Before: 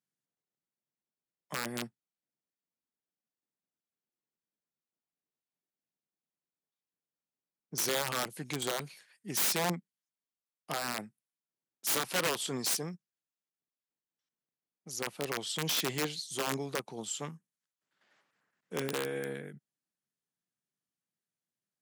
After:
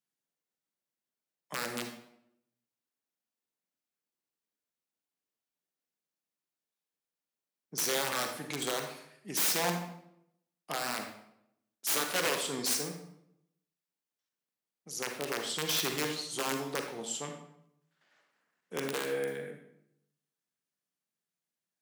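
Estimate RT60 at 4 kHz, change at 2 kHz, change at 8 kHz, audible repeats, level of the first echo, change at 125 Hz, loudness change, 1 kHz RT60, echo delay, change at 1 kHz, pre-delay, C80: 0.55 s, +1.5 dB, +1.0 dB, no echo audible, no echo audible, −3.0 dB, +1.0 dB, 0.70 s, no echo audible, +1.0 dB, 37 ms, 9.0 dB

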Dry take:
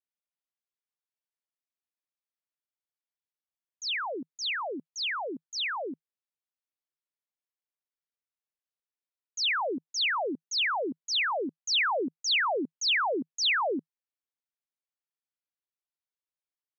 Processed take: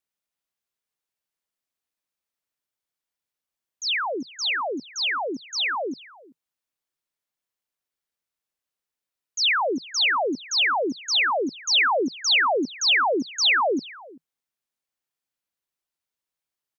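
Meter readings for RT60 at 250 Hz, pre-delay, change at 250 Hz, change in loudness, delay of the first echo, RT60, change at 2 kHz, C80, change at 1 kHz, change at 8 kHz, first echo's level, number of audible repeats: no reverb audible, no reverb audible, +6.5 dB, +6.5 dB, 384 ms, no reverb audible, +6.5 dB, no reverb audible, +6.5 dB, can't be measured, −22.0 dB, 1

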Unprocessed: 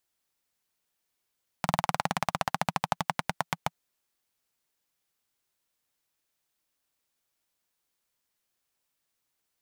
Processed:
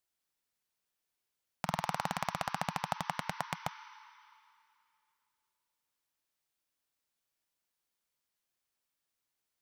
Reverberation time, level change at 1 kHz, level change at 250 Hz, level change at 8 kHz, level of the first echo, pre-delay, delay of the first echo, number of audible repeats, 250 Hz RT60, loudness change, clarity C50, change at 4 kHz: 2.6 s, −5.5 dB, −6.0 dB, −6.0 dB, no echo audible, 20 ms, no echo audible, no echo audible, 2.5 s, −5.5 dB, 12.0 dB, −5.5 dB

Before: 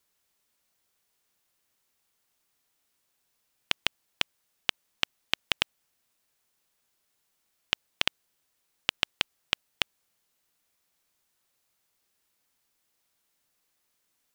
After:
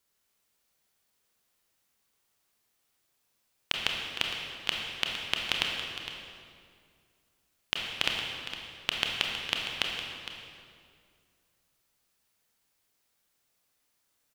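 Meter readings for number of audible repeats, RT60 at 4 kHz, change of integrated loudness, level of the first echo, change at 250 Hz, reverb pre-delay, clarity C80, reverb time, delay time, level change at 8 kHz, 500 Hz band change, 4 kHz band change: 1, 1.7 s, −0.5 dB, −12.0 dB, +1.5 dB, 25 ms, 2.5 dB, 2.2 s, 460 ms, +0.5 dB, +1.5 dB, +0.5 dB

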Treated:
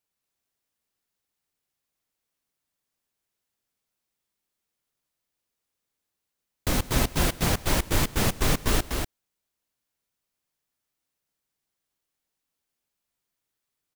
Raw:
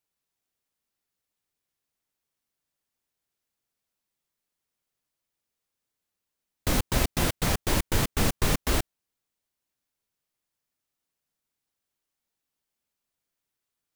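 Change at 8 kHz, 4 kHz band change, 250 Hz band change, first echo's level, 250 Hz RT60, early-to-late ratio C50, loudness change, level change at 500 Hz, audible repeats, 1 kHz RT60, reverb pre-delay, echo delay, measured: +1.5 dB, +1.5 dB, +1.0 dB, −19.0 dB, no reverb audible, no reverb audible, +1.0 dB, +1.5 dB, 2, no reverb audible, no reverb audible, 102 ms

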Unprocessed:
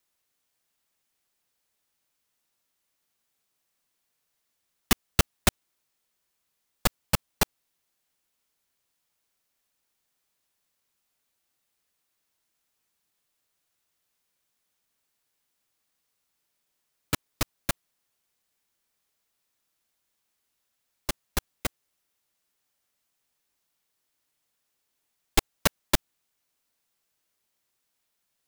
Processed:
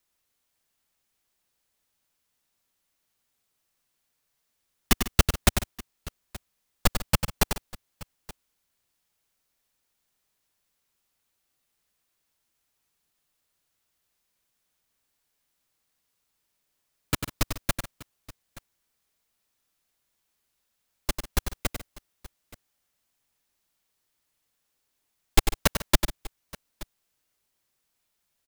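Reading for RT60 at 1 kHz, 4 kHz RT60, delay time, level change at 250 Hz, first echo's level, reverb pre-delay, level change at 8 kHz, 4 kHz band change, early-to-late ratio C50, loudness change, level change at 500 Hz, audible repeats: no reverb audible, no reverb audible, 96 ms, +2.0 dB, −7.5 dB, no reverb audible, +1.0 dB, +1.0 dB, no reverb audible, +1.0 dB, +1.0 dB, 3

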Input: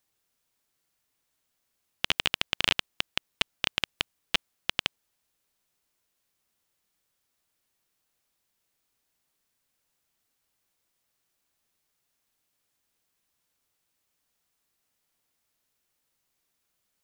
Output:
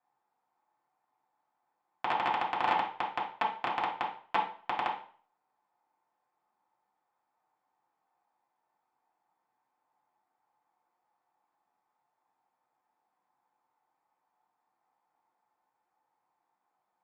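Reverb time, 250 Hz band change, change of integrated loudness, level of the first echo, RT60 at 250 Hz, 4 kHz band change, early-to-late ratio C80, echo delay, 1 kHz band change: 0.45 s, −1.0 dB, −3.0 dB, no echo audible, 0.40 s, −15.5 dB, 12.0 dB, no echo audible, +12.5 dB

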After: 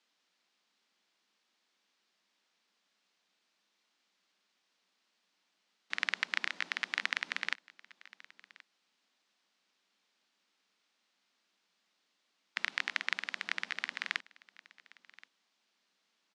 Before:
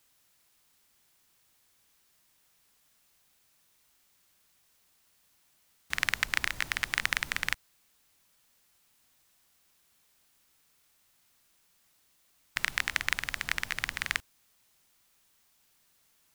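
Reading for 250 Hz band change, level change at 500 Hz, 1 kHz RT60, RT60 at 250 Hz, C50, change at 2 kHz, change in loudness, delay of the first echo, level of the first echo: −6.0 dB, −5.0 dB, no reverb audible, no reverb audible, no reverb audible, −4.5 dB, −4.5 dB, 1,076 ms, −22.0 dB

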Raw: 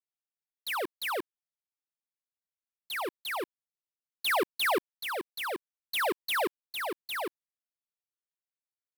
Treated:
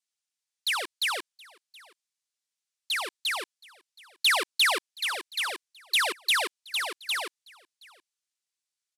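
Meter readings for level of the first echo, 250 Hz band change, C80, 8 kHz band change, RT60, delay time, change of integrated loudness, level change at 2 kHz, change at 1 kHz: −24.0 dB, −9.0 dB, no reverb audible, +9.0 dB, no reverb audible, 723 ms, +5.5 dB, +5.5 dB, 0.0 dB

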